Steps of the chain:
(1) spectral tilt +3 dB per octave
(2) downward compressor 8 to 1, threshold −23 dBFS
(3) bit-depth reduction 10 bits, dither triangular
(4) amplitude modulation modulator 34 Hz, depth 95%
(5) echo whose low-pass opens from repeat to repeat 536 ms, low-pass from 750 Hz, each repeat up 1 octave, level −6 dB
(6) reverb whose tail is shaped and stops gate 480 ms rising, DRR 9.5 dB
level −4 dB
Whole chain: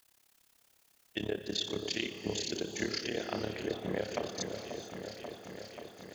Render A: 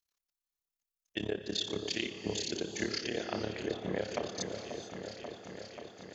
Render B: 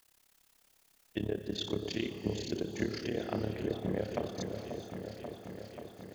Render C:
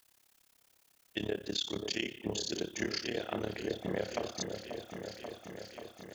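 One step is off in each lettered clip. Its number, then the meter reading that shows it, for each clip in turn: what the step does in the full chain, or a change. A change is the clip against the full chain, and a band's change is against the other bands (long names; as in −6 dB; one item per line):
3, distortion level −28 dB
1, 125 Hz band +8.5 dB
6, echo-to-direct ratio −4.5 dB to −6.5 dB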